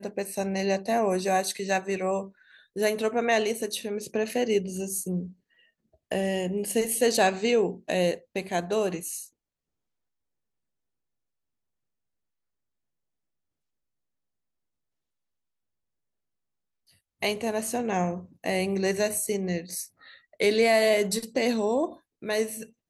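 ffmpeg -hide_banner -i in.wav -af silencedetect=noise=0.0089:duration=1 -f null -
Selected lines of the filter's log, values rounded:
silence_start: 9.26
silence_end: 17.22 | silence_duration: 7.96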